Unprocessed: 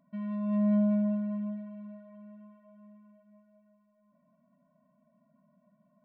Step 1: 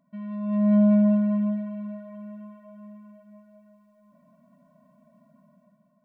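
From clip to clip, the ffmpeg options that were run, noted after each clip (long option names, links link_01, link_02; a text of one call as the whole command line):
ffmpeg -i in.wav -af "dynaudnorm=framelen=290:gausssize=5:maxgain=10dB" out.wav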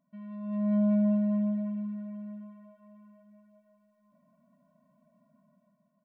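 ffmpeg -i in.wav -af "aecho=1:1:308|616|924|1232|1540:0.224|0.112|0.056|0.028|0.014,volume=-8dB" out.wav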